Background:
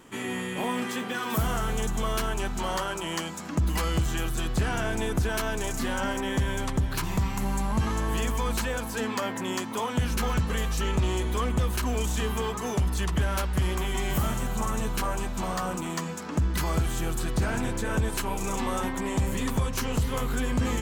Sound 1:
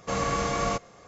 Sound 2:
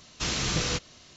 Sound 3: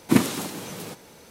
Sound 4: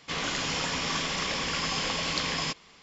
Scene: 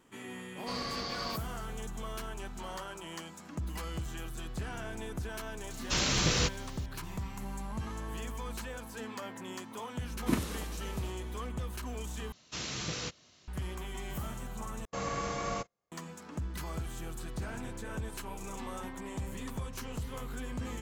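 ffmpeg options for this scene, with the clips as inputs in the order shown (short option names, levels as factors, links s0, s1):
-filter_complex "[1:a]asplit=2[s0][s1];[2:a]asplit=2[s2][s3];[0:a]volume=0.251[s4];[s0]lowpass=f=4600:t=q:w=10[s5];[s2]acrusher=bits=9:mix=0:aa=0.000001[s6];[s3]highpass=75[s7];[s1]agate=range=0.0447:threshold=0.00891:ratio=16:release=100:detection=peak[s8];[s4]asplit=3[s9][s10][s11];[s9]atrim=end=12.324[s12];[s7]atrim=end=1.16,asetpts=PTS-STARTPTS,volume=0.355[s13];[s10]atrim=start=13.476:end=14.854[s14];[s8]atrim=end=1.07,asetpts=PTS-STARTPTS,volume=0.398[s15];[s11]atrim=start=15.916[s16];[s5]atrim=end=1.07,asetpts=PTS-STARTPTS,volume=0.224,afade=t=in:d=0.004:c=hsin,afade=t=out:st=1.066:d=0.004:c=hsin,adelay=590[s17];[s6]atrim=end=1.16,asetpts=PTS-STARTPTS,volume=0.944,afade=t=in:d=0.004:c=hsin,afade=t=out:st=1.156:d=0.004:c=hsin,adelay=5700[s18];[3:a]atrim=end=1.3,asetpts=PTS-STARTPTS,volume=0.251,afade=t=in:d=0.004:c=hsin,afade=t=out:st=1.296:d=0.004:c=hsin,adelay=10170[s19];[s12][s13]acrossfade=d=0.004:c1=hsin:c2=hsin[s20];[s20][s14]acrossfade=d=0.004:c1=hsin:c2=hsin[s21];[s21][s15]acrossfade=d=0.004:c1=hsin:c2=hsin[s22];[s22][s16]acrossfade=d=0.004:c1=hsin:c2=hsin[s23];[s23][s17][s18][s19]amix=inputs=4:normalize=0"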